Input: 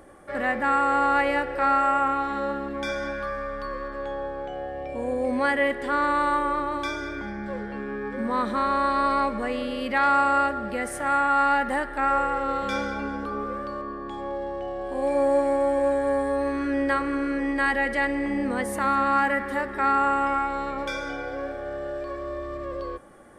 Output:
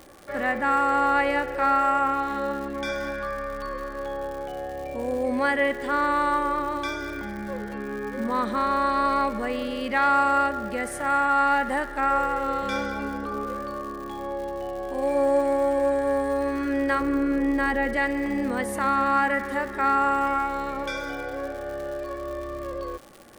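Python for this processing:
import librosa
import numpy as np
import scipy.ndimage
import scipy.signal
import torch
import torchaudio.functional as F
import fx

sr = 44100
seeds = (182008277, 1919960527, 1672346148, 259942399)

y = fx.tilt_shelf(x, sr, db=4.5, hz=790.0, at=(17.0, 17.97))
y = fx.dmg_crackle(y, sr, seeds[0], per_s=160.0, level_db=-35.0)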